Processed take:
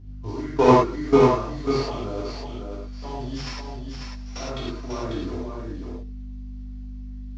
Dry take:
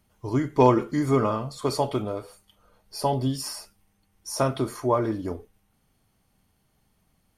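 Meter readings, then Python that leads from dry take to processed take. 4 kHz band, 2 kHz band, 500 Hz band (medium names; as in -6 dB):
+1.0 dB, +4.0 dB, +3.0 dB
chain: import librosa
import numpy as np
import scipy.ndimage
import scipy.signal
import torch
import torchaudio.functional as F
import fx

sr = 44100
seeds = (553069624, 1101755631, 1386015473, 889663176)

y = fx.cvsd(x, sr, bps=32000)
y = fx.level_steps(y, sr, step_db=19)
y = fx.add_hum(y, sr, base_hz=50, snr_db=12)
y = y + 10.0 ** (-5.5 / 20.0) * np.pad(y, (int(544 * sr / 1000.0), 0))[:len(y)]
y = fx.rev_gated(y, sr, seeds[0], gate_ms=140, shape='flat', drr_db=-7.5)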